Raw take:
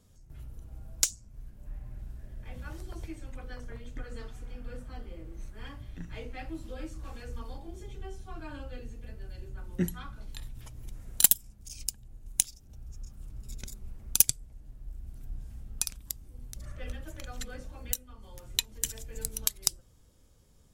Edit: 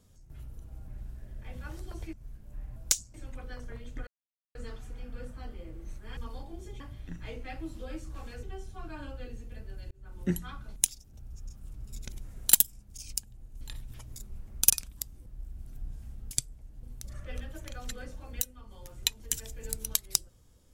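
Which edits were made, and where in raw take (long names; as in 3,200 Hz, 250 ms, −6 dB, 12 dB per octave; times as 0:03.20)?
0:00.88–0:01.26: swap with 0:01.89–0:03.14
0:04.07: splice in silence 0.48 s
0:07.32–0:07.95: move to 0:05.69
0:09.43–0:09.74: fade in
0:10.28–0:10.83: swap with 0:12.32–0:13.68
0:14.22–0:14.74: swap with 0:15.79–0:16.35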